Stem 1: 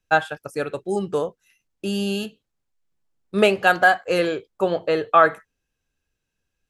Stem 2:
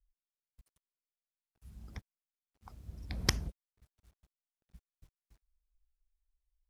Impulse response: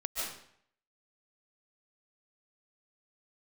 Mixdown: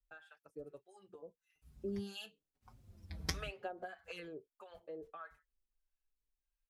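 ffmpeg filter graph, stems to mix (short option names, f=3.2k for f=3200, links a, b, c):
-filter_complex "[0:a]bass=f=250:g=-4,treble=f=4k:g=-6,acompressor=threshold=-24dB:ratio=10,acrossover=split=700[a][b];[a]aeval=exprs='val(0)*(1-1/2+1/2*cos(2*PI*1.6*n/s))':c=same[c];[b]aeval=exprs='val(0)*(1-1/2-1/2*cos(2*PI*1.6*n/s))':c=same[d];[c][d]amix=inputs=2:normalize=0,volume=-7dB,afade=t=in:st=1.32:d=0.61:silence=0.334965,afade=t=out:st=4.11:d=0.33:silence=0.375837[e];[1:a]flanger=delay=5.6:depth=8.4:regen=54:speed=1.4:shape=triangular,volume=-1dB[f];[e][f]amix=inputs=2:normalize=0,asplit=2[g][h];[h]adelay=5.1,afreqshift=-1.1[i];[g][i]amix=inputs=2:normalize=1"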